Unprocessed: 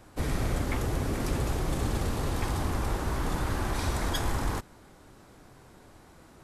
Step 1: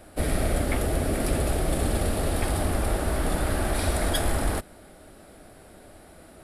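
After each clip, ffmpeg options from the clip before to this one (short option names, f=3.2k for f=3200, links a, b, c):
-af "equalizer=f=125:t=o:w=0.33:g=-10,equalizer=f=630:t=o:w=0.33:g=8,equalizer=f=1k:t=o:w=0.33:g=-9,equalizer=f=6.3k:t=o:w=0.33:g=-9,equalizer=f=10k:t=o:w=0.33:g=10,volume=4.5dB"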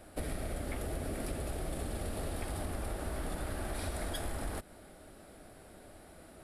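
-af "acompressor=threshold=-29dB:ratio=6,volume=-5dB"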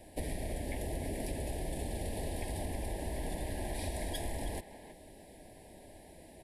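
-filter_complex "[0:a]asuperstop=centerf=1300:order=12:qfactor=2.1,asplit=2[a][b];[b]adelay=320,highpass=300,lowpass=3.4k,asoftclip=type=hard:threshold=-33.5dB,volume=-10dB[c];[a][c]amix=inputs=2:normalize=0"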